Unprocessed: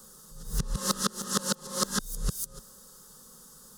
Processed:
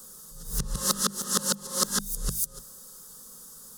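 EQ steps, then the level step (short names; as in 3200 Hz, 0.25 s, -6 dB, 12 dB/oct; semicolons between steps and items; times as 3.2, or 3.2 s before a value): high shelf 6900 Hz +8.5 dB; notches 50/100/150/200 Hz; notch 2400 Hz, Q 16; 0.0 dB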